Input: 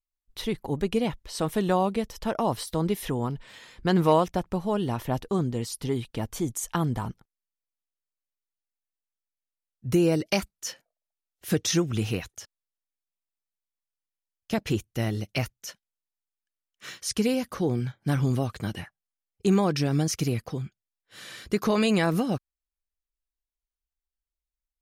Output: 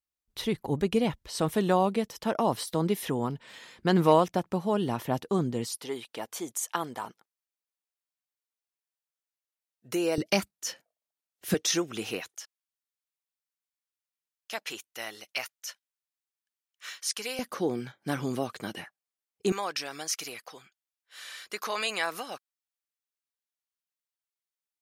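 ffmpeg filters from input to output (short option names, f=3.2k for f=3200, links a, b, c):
-af "asetnsamples=n=441:p=0,asendcmd='1.55 highpass f 150;5.77 highpass f 480;10.18 highpass f 140;11.54 highpass f 370;12.37 highpass f 910;17.39 highpass f 280;19.52 highpass f 890',highpass=59"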